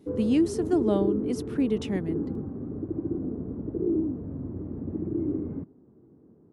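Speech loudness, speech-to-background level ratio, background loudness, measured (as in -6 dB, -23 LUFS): -27.0 LUFS, 5.0 dB, -32.0 LUFS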